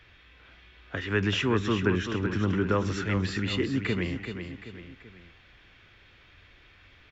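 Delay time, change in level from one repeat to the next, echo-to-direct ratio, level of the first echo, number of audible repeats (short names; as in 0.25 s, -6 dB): 0.385 s, -7.0 dB, -7.0 dB, -8.0 dB, 3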